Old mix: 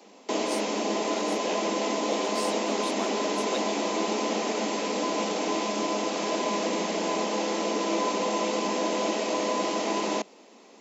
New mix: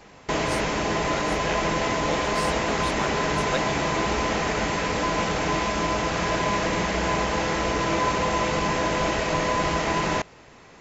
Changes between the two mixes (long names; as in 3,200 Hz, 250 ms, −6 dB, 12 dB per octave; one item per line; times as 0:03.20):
background: remove Butterworth high-pass 200 Hz 72 dB per octave
master: add parametric band 1,600 Hz +12.5 dB 1.1 octaves